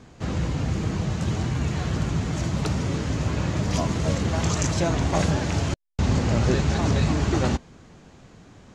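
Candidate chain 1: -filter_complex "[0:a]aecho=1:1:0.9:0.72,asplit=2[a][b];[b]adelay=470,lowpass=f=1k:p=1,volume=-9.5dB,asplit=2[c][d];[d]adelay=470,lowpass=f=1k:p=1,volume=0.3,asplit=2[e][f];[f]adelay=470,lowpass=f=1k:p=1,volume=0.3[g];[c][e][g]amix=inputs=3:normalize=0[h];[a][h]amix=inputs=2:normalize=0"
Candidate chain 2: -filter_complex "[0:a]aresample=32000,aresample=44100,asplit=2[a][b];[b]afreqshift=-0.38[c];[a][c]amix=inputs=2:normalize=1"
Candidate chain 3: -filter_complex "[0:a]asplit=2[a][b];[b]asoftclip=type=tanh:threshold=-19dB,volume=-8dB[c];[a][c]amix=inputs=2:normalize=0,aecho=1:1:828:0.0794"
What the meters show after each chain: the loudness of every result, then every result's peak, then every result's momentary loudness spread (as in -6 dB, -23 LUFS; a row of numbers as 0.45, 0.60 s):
-21.0, -28.0, -22.5 LUFS; -6.5, -11.5, -8.5 dBFS; 7, 6, 6 LU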